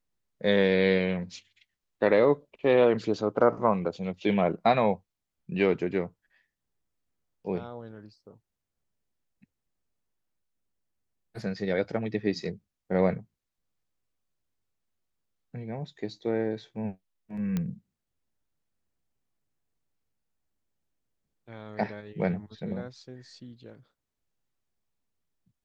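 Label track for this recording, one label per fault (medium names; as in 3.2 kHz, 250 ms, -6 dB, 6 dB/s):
17.570000	17.570000	pop -17 dBFS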